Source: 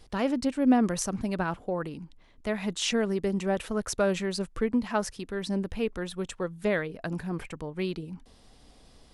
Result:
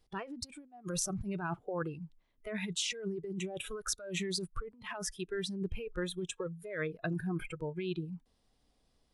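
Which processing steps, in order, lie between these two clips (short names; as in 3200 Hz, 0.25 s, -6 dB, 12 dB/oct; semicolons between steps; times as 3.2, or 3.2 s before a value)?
negative-ratio compressor -32 dBFS, ratio -1; spectral noise reduction 18 dB; gain -3.5 dB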